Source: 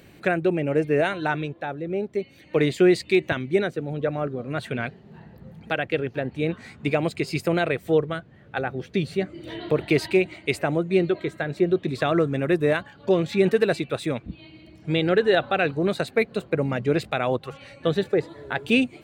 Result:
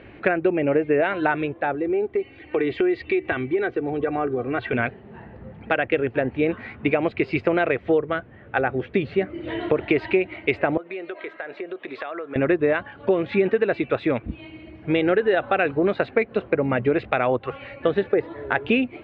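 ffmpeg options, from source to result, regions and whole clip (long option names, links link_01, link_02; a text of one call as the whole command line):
ffmpeg -i in.wav -filter_complex "[0:a]asettb=1/sr,asplit=3[link_01][link_02][link_03];[link_01]atrim=end=1.744[link_04];[link_02]atrim=start=1.74:end=4.73,asetpts=PTS-STARTPTS,afade=type=in:duration=0.004:curve=qsin,afade=type=out:start_time=2.986:duration=0.004:curve=qsin,aecho=1:1:2.6:0.59,atrim=end_sample=131859,acompressor=threshold=-27dB:ratio=3:attack=3.2:release=140:knee=1:detection=peak,lowpass=5900[link_05];[link_03]atrim=start=4.726[link_06];[link_04][link_05]acrossfade=duration=0.004:curve1=hsin:curve2=qsin[link_07];[link_07][link_06]acrossfade=duration=0.004:curve1=qsin:curve2=hsin,asettb=1/sr,asplit=3[link_08][link_09][link_10];[link_08]atrim=end=10.774[link_11];[link_09]atrim=start=10.77:end=12.36,asetpts=PTS-STARTPTS,afade=type=in:duration=0.004:curve=qsin,afade=type=out:start_time=1.586:duration=0.004:curve=qsin,highpass=550,acompressor=threshold=-35dB:ratio=8:attack=3.2:release=140:knee=1:detection=peak[link_12];[link_10]atrim=start=12.356[link_13];[link_11][link_12]acrossfade=duration=0.004:curve1=hsin:curve2=qsin[link_14];[link_14][link_13]acrossfade=duration=0.004:curve1=qsin:curve2=hsin,lowpass=frequency=2700:width=0.5412,lowpass=frequency=2700:width=1.3066,equalizer=frequency=160:width_type=o:width=0.57:gain=-10.5,acompressor=threshold=-24dB:ratio=5,volume=7.5dB" out.wav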